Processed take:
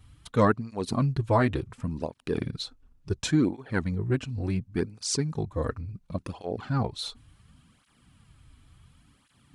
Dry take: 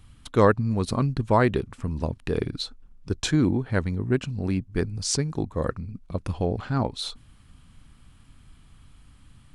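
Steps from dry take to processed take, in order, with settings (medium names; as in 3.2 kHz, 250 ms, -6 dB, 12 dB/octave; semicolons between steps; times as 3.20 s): cancelling through-zero flanger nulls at 0.7 Hz, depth 6 ms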